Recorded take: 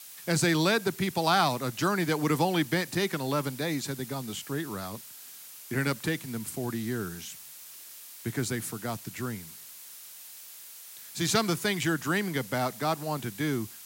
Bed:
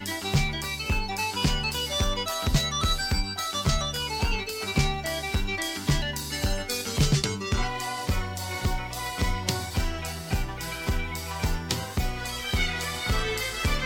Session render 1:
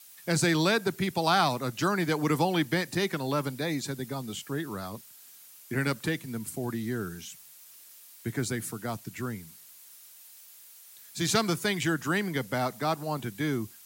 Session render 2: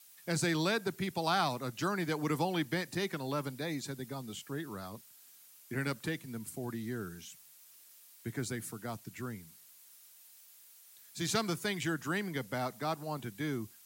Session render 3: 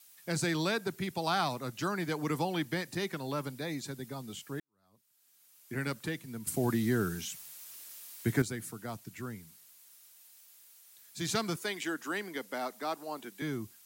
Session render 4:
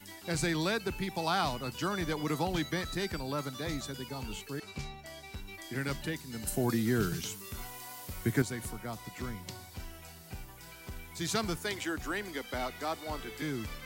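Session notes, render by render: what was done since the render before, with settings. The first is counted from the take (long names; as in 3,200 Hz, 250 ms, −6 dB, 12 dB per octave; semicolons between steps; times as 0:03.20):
broadband denoise 7 dB, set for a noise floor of −47 dBFS
level −6.5 dB
0:04.60–0:05.75: fade in quadratic; 0:06.47–0:08.42: clip gain +9.5 dB; 0:11.56–0:13.42: high-pass filter 250 Hz 24 dB per octave
mix in bed −17 dB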